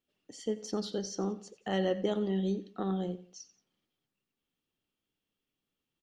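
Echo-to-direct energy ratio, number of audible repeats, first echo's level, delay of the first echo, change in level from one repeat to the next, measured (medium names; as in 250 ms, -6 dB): -16.5 dB, 2, -17.0 dB, 89 ms, -8.5 dB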